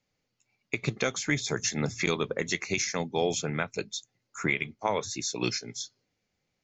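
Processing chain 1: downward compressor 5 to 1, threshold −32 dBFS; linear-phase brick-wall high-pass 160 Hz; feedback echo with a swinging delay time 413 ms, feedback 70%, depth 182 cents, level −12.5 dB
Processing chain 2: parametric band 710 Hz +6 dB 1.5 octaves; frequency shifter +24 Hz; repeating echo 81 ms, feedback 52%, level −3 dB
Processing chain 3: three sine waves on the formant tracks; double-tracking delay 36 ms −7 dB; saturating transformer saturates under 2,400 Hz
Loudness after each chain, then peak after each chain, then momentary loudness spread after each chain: −36.5, −26.5, −33.0 LKFS; −16.5, −7.5, −13.5 dBFS; 6, 10, 10 LU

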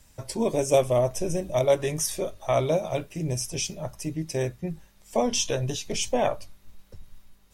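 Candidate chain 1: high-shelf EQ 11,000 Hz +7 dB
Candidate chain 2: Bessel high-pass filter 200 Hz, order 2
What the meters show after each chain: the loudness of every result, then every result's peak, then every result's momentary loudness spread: −26.5, −27.5 LKFS; −8.5, −9.0 dBFS; 10, 12 LU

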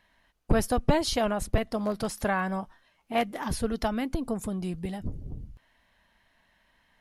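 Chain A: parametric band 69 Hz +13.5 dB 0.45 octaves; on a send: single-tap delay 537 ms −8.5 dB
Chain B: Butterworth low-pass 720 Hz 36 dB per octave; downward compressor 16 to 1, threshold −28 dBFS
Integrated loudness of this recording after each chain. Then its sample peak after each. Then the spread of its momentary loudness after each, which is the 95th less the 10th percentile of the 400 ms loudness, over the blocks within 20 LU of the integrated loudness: −28.5, −35.5 LKFS; −5.5, −16.5 dBFS; 12, 6 LU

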